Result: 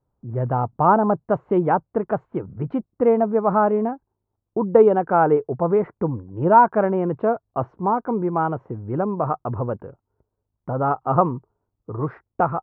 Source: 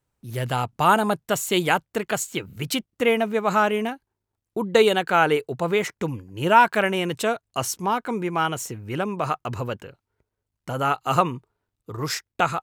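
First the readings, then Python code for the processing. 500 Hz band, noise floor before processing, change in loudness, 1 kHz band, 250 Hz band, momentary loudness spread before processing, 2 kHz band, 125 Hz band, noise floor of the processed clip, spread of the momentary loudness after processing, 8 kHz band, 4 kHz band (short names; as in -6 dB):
+4.0 dB, -84 dBFS, +2.0 dB, +2.0 dB, +4.0 dB, 13 LU, -9.0 dB, +4.0 dB, -80 dBFS, 13 LU, under -40 dB, under -30 dB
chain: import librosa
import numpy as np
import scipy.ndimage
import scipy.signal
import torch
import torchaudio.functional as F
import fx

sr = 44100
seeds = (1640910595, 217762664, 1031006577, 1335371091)

y = scipy.signal.sosfilt(scipy.signal.butter(4, 1100.0, 'lowpass', fs=sr, output='sos'), x)
y = y * librosa.db_to_amplitude(4.0)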